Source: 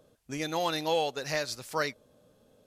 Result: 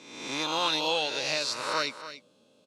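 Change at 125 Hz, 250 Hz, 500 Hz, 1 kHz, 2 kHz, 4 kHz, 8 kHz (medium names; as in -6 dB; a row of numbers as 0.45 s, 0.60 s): -6.0 dB, -1.0 dB, -2.0 dB, +1.5 dB, +3.5 dB, +8.0 dB, +4.0 dB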